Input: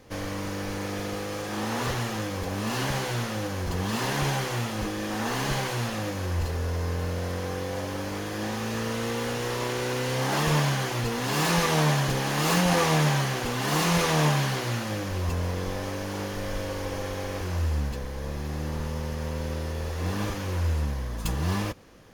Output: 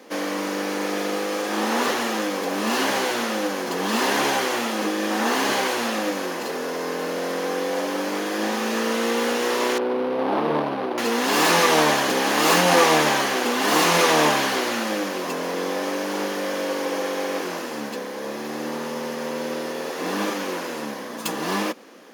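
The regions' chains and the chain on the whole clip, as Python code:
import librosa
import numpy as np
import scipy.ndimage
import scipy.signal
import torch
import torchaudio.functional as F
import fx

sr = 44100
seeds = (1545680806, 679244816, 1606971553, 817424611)

y = fx.chain(x, sr, fx.median_filter(points=25),
    fx.moving_average(points=6), at=(9.78, 10.98))
y = scipy.signal.sosfilt(scipy.signal.butter(6, 220.0, 'highpass', fs=sr, output='sos'), y)
y = fx.peak_eq(y, sr, hz=8800.0, db=-2.0, octaves=2.0)
y = F.gain(torch.from_numpy(y), 8.0).numpy()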